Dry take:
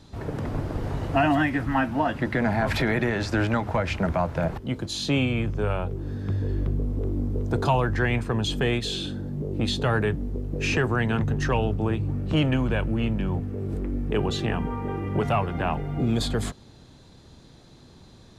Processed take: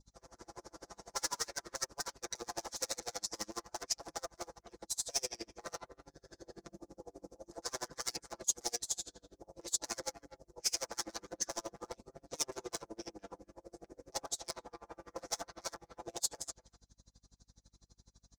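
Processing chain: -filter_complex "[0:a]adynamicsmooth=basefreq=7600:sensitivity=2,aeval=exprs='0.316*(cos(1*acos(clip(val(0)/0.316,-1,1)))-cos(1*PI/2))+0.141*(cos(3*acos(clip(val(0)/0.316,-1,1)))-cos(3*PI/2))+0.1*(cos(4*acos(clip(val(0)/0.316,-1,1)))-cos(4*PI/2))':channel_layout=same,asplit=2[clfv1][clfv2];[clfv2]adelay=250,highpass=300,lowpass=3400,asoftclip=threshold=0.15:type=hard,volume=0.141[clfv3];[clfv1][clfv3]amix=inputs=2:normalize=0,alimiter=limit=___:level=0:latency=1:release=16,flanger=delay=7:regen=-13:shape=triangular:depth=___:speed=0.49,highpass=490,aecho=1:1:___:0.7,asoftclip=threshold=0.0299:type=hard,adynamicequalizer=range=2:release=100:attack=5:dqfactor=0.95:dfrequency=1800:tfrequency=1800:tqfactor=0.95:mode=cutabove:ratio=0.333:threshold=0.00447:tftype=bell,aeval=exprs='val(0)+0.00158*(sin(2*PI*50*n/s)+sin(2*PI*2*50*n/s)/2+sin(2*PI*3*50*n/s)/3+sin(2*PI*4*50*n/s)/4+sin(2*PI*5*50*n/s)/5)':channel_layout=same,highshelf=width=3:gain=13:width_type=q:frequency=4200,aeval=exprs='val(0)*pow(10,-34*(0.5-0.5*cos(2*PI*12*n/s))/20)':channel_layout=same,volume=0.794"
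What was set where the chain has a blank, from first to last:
0.299, 3.2, 5.9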